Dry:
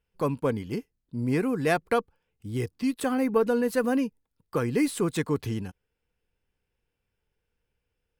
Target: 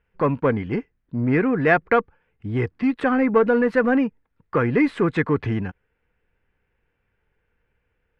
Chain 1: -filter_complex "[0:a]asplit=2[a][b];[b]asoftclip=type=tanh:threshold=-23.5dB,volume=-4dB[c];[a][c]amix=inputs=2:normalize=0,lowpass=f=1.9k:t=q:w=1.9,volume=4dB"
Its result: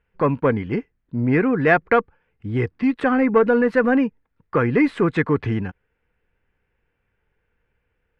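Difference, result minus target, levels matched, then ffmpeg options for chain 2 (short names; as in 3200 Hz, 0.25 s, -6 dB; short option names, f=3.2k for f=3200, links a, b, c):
soft clip: distortion -6 dB
-filter_complex "[0:a]asplit=2[a][b];[b]asoftclip=type=tanh:threshold=-31.5dB,volume=-4dB[c];[a][c]amix=inputs=2:normalize=0,lowpass=f=1.9k:t=q:w=1.9,volume=4dB"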